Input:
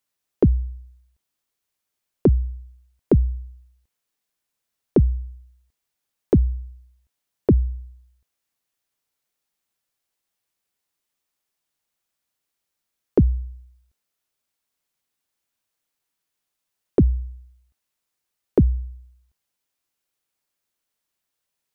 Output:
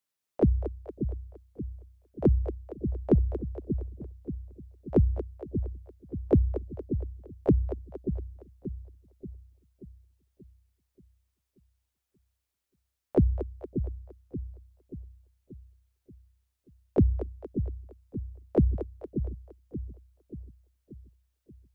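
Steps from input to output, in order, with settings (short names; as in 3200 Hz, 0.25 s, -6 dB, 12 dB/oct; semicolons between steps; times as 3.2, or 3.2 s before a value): harmoniser +7 st -12 dB; split-band echo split 370 Hz, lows 0.582 s, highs 0.232 s, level -8 dB; gain -6 dB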